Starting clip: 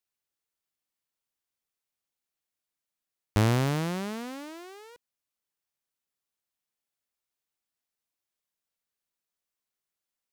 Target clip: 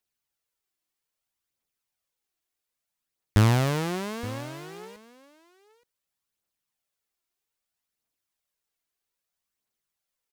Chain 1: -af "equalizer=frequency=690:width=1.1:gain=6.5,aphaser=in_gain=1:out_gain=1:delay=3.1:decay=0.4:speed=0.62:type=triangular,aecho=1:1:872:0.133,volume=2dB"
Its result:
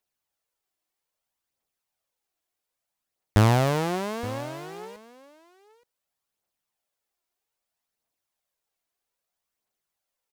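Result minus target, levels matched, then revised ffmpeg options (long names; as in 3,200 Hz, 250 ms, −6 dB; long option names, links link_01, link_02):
500 Hz band +3.5 dB
-af "aphaser=in_gain=1:out_gain=1:delay=3.1:decay=0.4:speed=0.62:type=triangular,aecho=1:1:872:0.133,volume=2dB"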